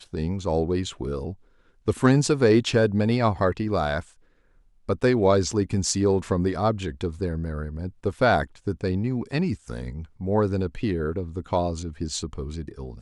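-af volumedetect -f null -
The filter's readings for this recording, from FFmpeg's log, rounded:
mean_volume: -24.6 dB
max_volume: -5.9 dB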